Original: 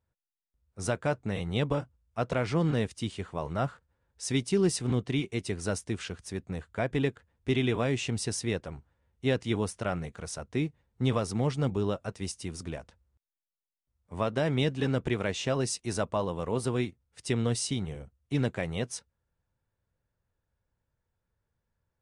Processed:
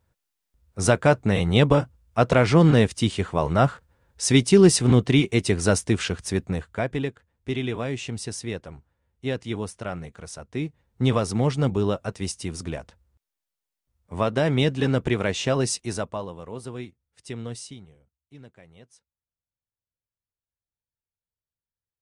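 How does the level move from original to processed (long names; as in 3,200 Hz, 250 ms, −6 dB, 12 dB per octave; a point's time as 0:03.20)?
0:06.40 +11 dB
0:07.09 −0.5 dB
0:10.49 −0.5 dB
0:11.02 +6 dB
0:15.74 +6 dB
0:16.41 −6 dB
0:17.59 −6 dB
0:18.01 −18.5 dB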